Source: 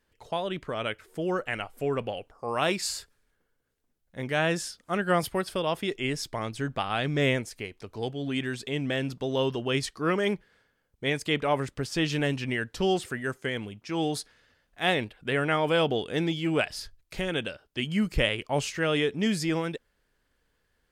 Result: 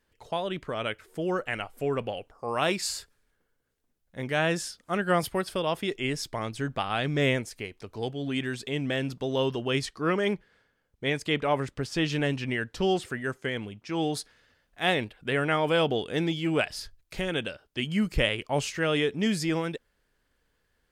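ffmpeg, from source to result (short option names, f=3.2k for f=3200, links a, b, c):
-filter_complex "[0:a]asettb=1/sr,asplit=3[a][b][c];[a]atrim=end=9.834[d];[b]atrim=start=9.83:end=14.17,asetpts=PTS-STARTPTS,afade=t=in:d=0.004:c=qsin,afade=t=out:st=4.336:d=0.004:c=qsin,highshelf=f=8.4k:g=-6.5[e];[c]atrim=start=14.166[f];[d][e]acrossfade=d=0.004:c1=hsin:c2=qsin[g];[g][f]acrossfade=d=0.004:c1=qsin:c2=hsin"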